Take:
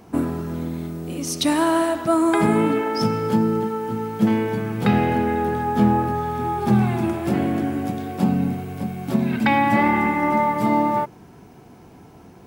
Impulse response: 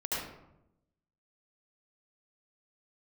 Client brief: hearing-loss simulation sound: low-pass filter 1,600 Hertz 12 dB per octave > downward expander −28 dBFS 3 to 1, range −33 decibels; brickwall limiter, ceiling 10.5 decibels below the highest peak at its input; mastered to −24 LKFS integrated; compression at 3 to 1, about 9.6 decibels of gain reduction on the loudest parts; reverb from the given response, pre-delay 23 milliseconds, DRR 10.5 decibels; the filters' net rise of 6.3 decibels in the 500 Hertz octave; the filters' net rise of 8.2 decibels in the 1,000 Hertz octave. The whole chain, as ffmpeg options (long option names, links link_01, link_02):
-filter_complex "[0:a]equalizer=frequency=500:width_type=o:gain=6,equalizer=frequency=1000:width_type=o:gain=8.5,acompressor=threshold=-22dB:ratio=3,alimiter=limit=-19.5dB:level=0:latency=1,asplit=2[link_01][link_02];[1:a]atrim=start_sample=2205,adelay=23[link_03];[link_02][link_03]afir=irnorm=-1:irlink=0,volume=-16dB[link_04];[link_01][link_04]amix=inputs=2:normalize=0,lowpass=1600,agate=range=-33dB:threshold=-28dB:ratio=3,volume=3.5dB"